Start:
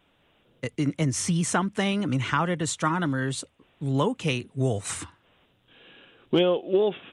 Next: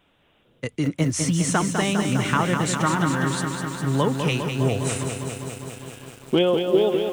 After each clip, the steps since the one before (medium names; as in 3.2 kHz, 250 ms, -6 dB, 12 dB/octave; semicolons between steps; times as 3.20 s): bit-crushed delay 202 ms, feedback 80%, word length 8-bit, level -6 dB; trim +2 dB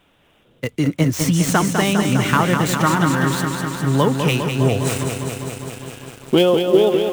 dead-time distortion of 0.05 ms; trim +5 dB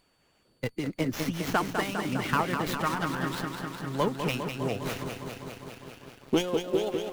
whistle 4.5 kHz -48 dBFS; harmonic-percussive split harmonic -12 dB; sliding maximum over 5 samples; trim -7 dB